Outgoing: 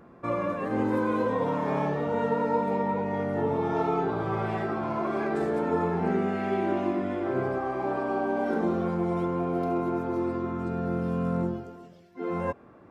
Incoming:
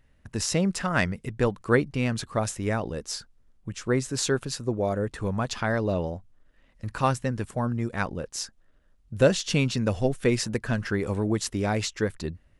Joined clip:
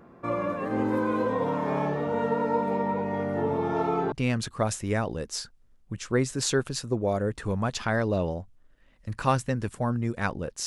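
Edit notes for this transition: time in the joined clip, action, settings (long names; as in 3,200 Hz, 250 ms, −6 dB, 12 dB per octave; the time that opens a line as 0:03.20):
outgoing
0:04.12: continue with incoming from 0:01.88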